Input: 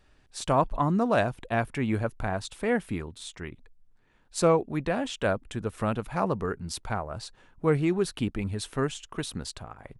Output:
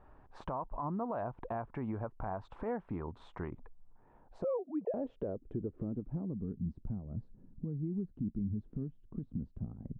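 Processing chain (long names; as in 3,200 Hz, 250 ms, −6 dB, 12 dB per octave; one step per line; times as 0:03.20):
0:04.44–0:04.94: three sine waves on the formant tracks
downward compressor 20 to 1, threshold −36 dBFS, peak gain reduction 19.5 dB
low-pass filter sweep 980 Hz → 220 Hz, 0:03.86–0:06.53
brickwall limiter −31 dBFS, peak gain reduction 9.5 dB
level +2.5 dB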